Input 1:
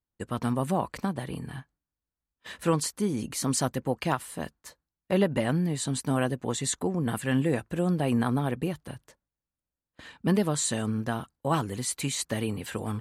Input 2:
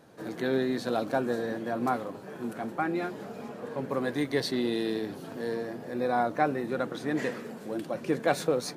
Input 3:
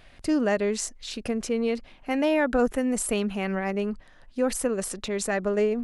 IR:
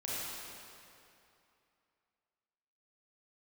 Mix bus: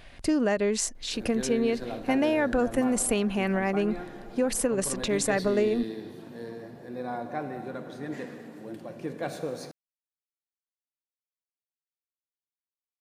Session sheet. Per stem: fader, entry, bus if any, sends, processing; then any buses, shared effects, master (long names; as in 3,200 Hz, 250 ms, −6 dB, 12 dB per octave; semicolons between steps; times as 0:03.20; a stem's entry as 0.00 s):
muted
−10.5 dB, 0.95 s, no bus, send −8 dB, low-shelf EQ 180 Hz +8 dB
+3.0 dB, 0.00 s, bus A, no send, no processing
bus A: 0.0 dB, downward compressor, threshold −21 dBFS, peak gain reduction 7 dB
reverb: on, RT60 2.7 s, pre-delay 29 ms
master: notch filter 1,300 Hz, Q 16